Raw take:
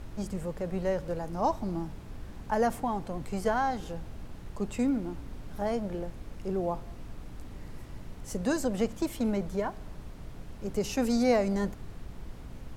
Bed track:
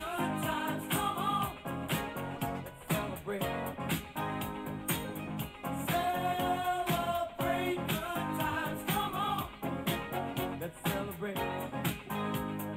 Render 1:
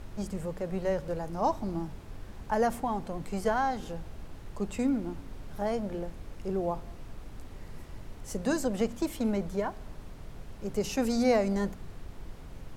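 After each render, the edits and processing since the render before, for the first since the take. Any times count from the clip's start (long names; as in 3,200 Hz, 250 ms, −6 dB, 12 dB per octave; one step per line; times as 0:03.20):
hum removal 60 Hz, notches 5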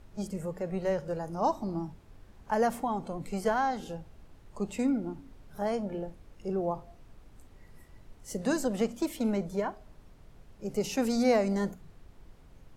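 noise reduction from a noise print 10 dB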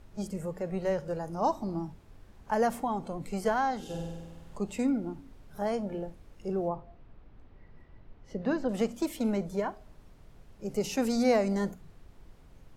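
0:03.84–0:04.58: flutter between parallel walls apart 8.3 metres, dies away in 1.3 s
0:06.68–0:08.69: high-frequency loss of the air 280 metres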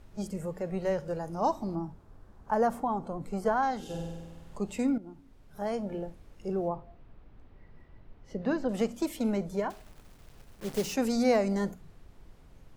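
0:01.75–0:03.63: high shelf with overshoot 1,700 Hz −6.5 dB, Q 1.5
0:04.98–0:05.92: fade in, from −12 dB
0:09.70–0:10.94: one scale factor per block 3 bits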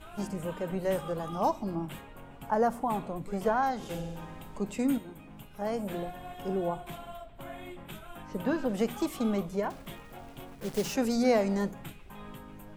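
mix in bed track −11.5 dB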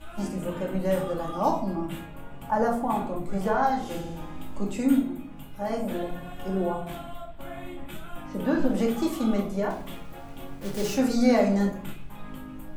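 rectangular room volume 480 cubic metres, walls furnished, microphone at 2.4 metres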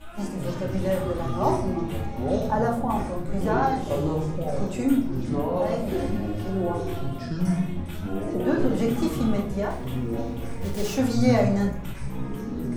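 delay with pitch and tempo change per echo 132 ms, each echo −7 semitones, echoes 3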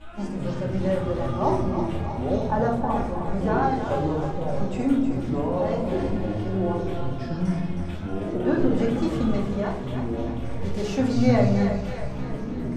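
high-frequency loss of the air 82 metres
echo with a time of its own for lows and highs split 430 Hz, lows 104 ms, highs 316 ms, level −7.5 dB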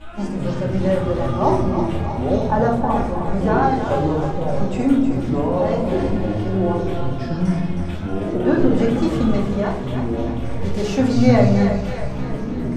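level +5.5 dB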